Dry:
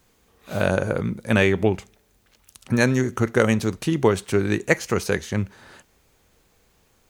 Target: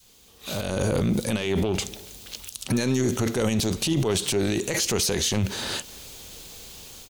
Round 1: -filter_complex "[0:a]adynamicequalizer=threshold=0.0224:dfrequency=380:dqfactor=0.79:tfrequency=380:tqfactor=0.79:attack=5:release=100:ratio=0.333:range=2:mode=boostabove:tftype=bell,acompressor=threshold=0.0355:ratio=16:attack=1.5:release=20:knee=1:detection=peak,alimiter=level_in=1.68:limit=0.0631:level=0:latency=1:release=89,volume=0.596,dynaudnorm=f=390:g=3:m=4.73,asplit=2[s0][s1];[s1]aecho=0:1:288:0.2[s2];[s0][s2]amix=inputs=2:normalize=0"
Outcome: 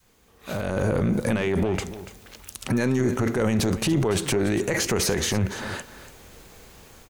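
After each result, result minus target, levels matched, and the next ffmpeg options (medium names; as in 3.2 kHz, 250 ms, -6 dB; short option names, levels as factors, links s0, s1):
echo-to-direct +10 dB; 4 kHz band -4.5 dB
-filter_complex "[0:a]adynamicequalizer=threshold=0.0224:dfrequency=380:dqfactor=0.79:tfrequency=380:tqfactor=0.79:attack=5:release=100:ratio=0.333:range=2:mode=boostabove:tftype=bell,acompressor=threshold=0.0355:ratio=16:attack=1.5:release=20:knee=1:detection=peak,alimiter=level_in=1.68:limit=0.0631:level=0:latency=1:release=89,volume=0.596,dynaudnorm=f=390:g=3:m=4.73,asplit=2[s0][s1];[s1]aecho=0:1:288:0.0631[s2];[s0][s2]amix=inputs=2:normalize=0"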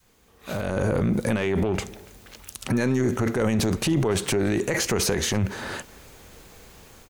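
4 kHz band -4.5 dB
-filter_complex "[0:a]adynamicequalizer=threshold=0.0224:dfrequency=380:dqfactor=0.79:tfrequency=380:tqfactor=0.79:attack=5:release=100:ratio=0.333:range=2:mode=boostabove:tftype=bell,acompressor=threshold=0.0355:ratio=16:attack=1.5:release=20:knee=1:detection=peak,highshelf=f=2500:t=q:w=1.5:g=9,alimiter=level_in=1.68:limit=0.0631:level=0:latency=1:release=89,volume=0.596,dynaudnorm=f=390:g=3:m=4.73,asplit=2[s0][s1];[s1]aecho=0:1:288:0.0631[s2];[s0][s2]amix=inputs=2:normalize=0"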